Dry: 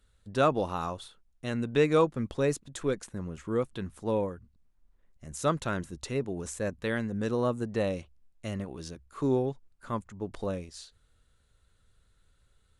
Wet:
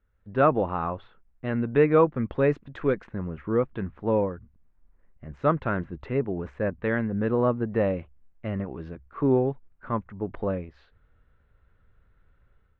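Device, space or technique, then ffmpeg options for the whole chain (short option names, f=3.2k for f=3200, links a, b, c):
action camera in a waterproof case: -filter_complex "[0:a]asettb=1/sr,asplit=3[a][b][c];[a]atrim=end=2.154[d];[b]atrim=start=2.15:end=3.23,asetpts=PTS-STARTPTS,afade=t=in:d=0.004:c=qsin,afade=t=out:st=1.076:d=0.004:c=qsin,highshelf=f=3k:g=8.5[e];[c]atrim=start=3.226[f];[d][e]acrossfade=d=0.004:c1=hsin:c2=qsin[g];[g][f]acrossfade=d=0.004:c1=qsin:c2=hsin,lowpass=f=2.2k:w=0.5412,lowpass=f=2.2k:w=1.3066,dynaudnorm=f=110:g=5:m=9.5dB,volume=-4.5dB" -ar 48000 -c:a aac -b:a 96k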